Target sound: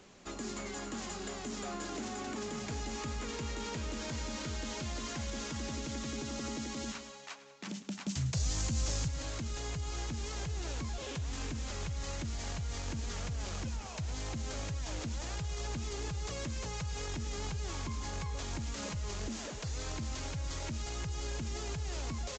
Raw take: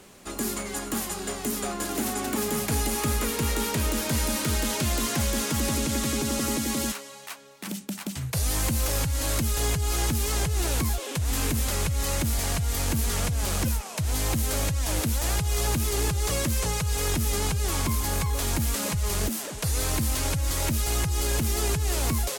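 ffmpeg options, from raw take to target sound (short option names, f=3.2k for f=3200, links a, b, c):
-filter_complex "[0:a]asplit=2[a][b];[b]aecho=0:1:191:0.112[c];[a][c]amix=inputs=2:normalize=0,aresample=16000,aresample=44100,alimiter=level_in=0.5dB:limit=-24dB:level=0:latency=1:release=49,volume=-0.5dB,asettb=1/sr,asplit=3[d][e][f];[d]atrim=end=8.074[g];[e]atrim=start=8.07:end=9.08,asetpts=PTS-STARTPTS,afade=t=in:d=0.004:c=qsin,afade=t=out:st=1.006:d=0.004:c=qsin,bass=f=250:g=6,treble=f=4k:g=9[h];[f]atrim=start=9.076[i];[g][h]acrossfade=d=0.004:c1=hsin:c2=qsin[j];[j][i]acrossfade=d=0.004:c1=qsin:c2=hsin,asplit=2[k][l];[l]aecho=0:1:107:0.158[m];[k][m]amix=inputs=2:normalize=0,volume=-6.5dB"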